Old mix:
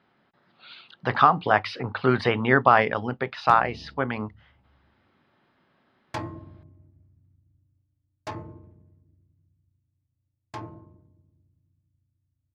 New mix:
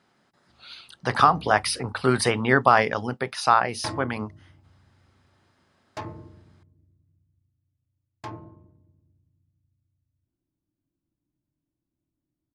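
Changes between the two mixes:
speech: remove low-pass 3.7 kHz 24 dB/octave; background: entry -2.30 s

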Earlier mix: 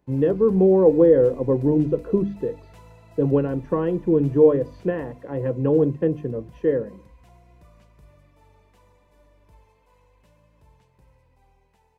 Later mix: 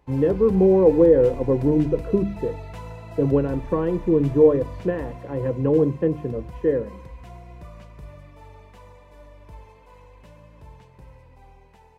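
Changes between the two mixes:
background +11.0 dB; master: add treble shelf 4.8 kHz -7 dB

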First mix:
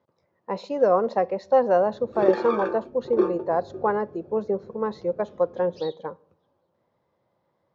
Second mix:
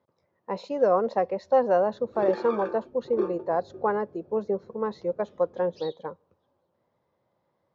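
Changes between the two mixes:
speech: send -10.5 dB; background -6.5 dB

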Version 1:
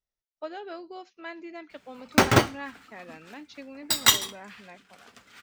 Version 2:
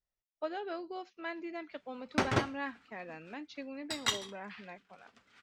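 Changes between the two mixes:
background -10.5 dB; master: add distance through air 70 m

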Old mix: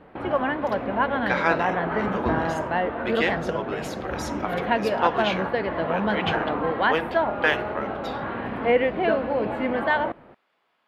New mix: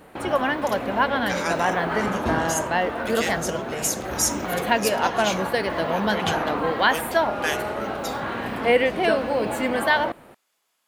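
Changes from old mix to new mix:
speech -8.5 dB; master: remove distance through air 410 m

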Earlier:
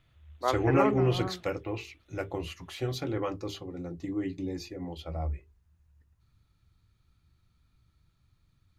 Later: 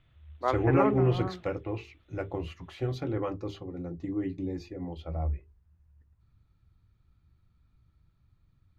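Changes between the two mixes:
speech: add low-pass 1.7 kHz 6 dB/octave; master: add bass shelf 160 Hz +3 dB

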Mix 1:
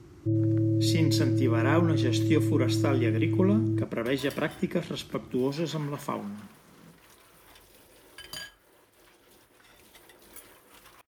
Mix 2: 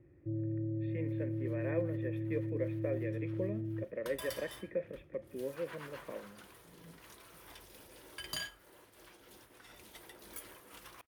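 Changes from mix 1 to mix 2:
speech: add cascade formant filter e; first sound -11.5 dB

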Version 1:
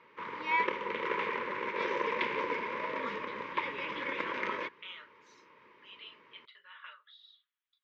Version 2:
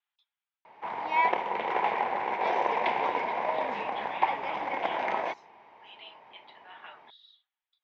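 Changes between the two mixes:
background: entry +0.65 s; master: remove Chebyshev band-stop 500–1100 Hz, order 2

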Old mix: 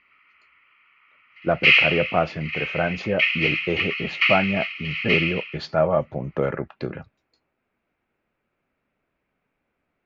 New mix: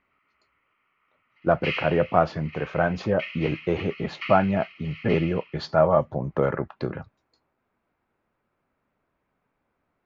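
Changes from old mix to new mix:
background -11.0 dB; master: add fifteen-band graphic EQ 100 Hz +3 dB, 1 kHz +5 dB, 2.5 kHz -6 dB

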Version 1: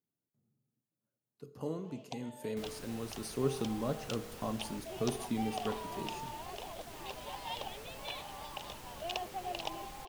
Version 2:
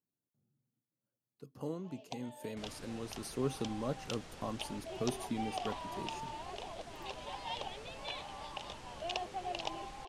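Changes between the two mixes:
second sound: add Bessel low-pass 6.9 kHz, order 8; reverb: off

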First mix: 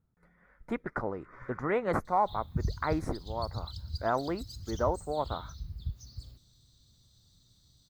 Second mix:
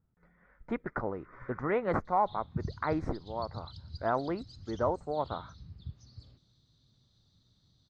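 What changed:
background: add band-pass 110–7800 Hz; master: add distance through air 160 m

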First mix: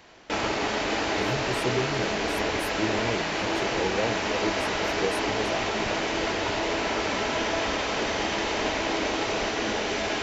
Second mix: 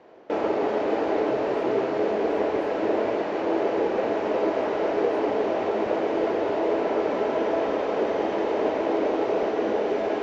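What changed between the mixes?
background +8.0 dB; master: add band-pass filter 460 Hz, Q 1.6

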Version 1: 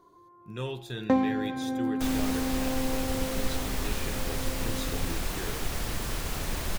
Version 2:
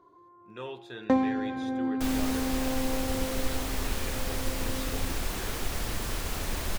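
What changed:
speech: add band-pass filter 1 kHz, Q 0.53; master: add peaking EQ 150 Hz -6 dB 0.33 oct

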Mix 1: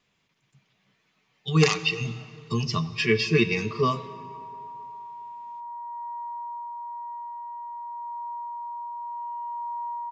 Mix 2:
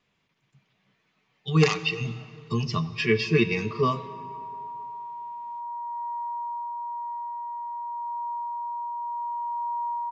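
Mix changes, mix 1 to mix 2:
background: add peaking EQ 510 Hz +15 dB 0.86 oct; master: add low-pass 3.8 kHz 6 dB/octave

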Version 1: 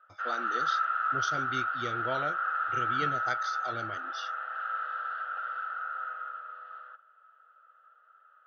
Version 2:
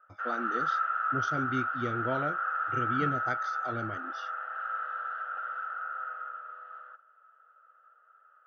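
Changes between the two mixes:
speech: add bass shelf 120 Hz +9 dB; master: add graphic EQ 250/4000/8000 Hz +7/-9/-7 dB

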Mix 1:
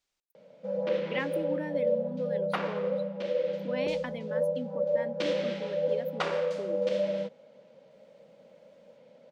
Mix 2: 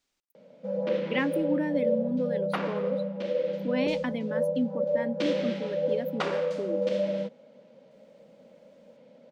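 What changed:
speech +3.5 dB; master: add peaking EQ 250 Hz +7.5 dB 0.79 oct

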